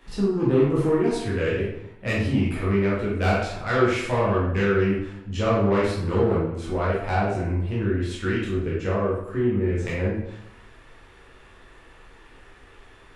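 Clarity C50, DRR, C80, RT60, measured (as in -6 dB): 0.5 dB, -7.5 dB, 5.0 dB, 0.80 s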